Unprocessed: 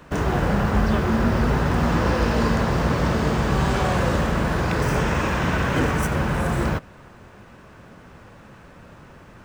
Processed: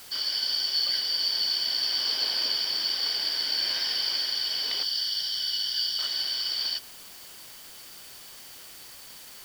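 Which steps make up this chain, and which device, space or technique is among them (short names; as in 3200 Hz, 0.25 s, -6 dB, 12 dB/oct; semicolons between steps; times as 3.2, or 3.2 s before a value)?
4.83–5.99 LPF 2100 Hz 12 dB/oct; split-band scrambled radio (four-band scrambler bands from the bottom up 4321; BPF 300–3100 Hz; white noise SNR 17 dB)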